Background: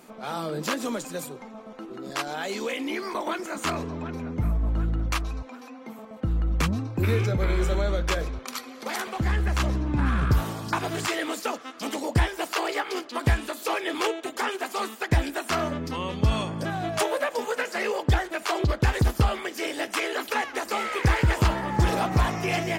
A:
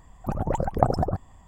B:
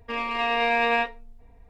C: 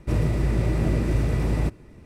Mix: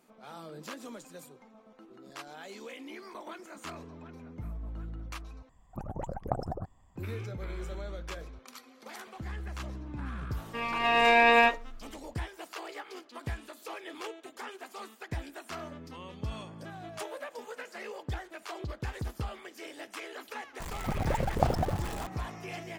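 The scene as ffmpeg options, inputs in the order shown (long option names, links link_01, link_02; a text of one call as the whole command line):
ffmpeg -i bed.wav -i cue0.wav -i cue1.wav -filter_complex "[1:a]asplit=2[link_01][link_02];[0:a]volume=-14.5dB[link_03];[2:a]dynaudnorm=framelen=120:gausssize=7:maxgain=8dB[link_04];[link_02]aeval=exprs='val(0)+0.5*0.0447*sgn(val(0))':channel_layout=same[link_05];[link_03]asplit=2[link_06][link_07];[link_06]atrim=end=5.494[link_08];[link_01]atrim=end=1.47,asetpts=PTS-STARTPTS,volume=-11.5dB[link_09];[link_07]atrim=start=6.956[link_10];[link_04]atrim=end=1.69,asetpts=PTS-STARTPTS,volume=-5.5dB,afade=type=in:duration=0.004:curve=hsin,afade=type=out:start_time=1.686:duration=0.004:curve=hsin,adelay=10450[link_11];[link_05]atrim=end=1.47,asetpts=PTS-STARTPTS,volume=-7dB,afade=type=in:duration=0.004:curve=hsin,afade=type=out:start_time=1.466:duration=0.004:curve=hsin,adelay=20600[link_12];[link_08][link_09]acrossfade=duration=0.004:curve1=hsin:curve2=hsin[link_13];[link_13][link_10]acrossfade=duration=0.004:curve1=hsin:curve2=hsin[link_14];[link_14][link_11][link_12]amix=inputs=3:normalize=0" out.wav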